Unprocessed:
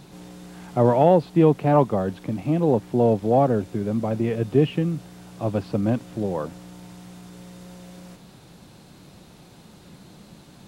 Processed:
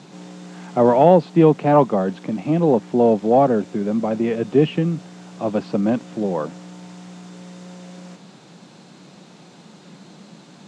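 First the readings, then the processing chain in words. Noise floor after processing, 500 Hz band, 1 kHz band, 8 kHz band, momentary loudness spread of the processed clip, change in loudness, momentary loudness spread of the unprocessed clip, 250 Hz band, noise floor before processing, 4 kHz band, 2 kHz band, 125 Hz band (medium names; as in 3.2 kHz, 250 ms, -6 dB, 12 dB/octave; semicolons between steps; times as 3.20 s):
-47 dBFS, +4.0 dB, +4.5 dB, no reading, 13 LU, +3.5 dB, 12 LU, +3.5 dB, -49 dBFS, +3.5 dB, +4.5 dB, -0.5 dB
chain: Chebyshev band-pass 170–7400 Hz, order 3; trim +4.5 dB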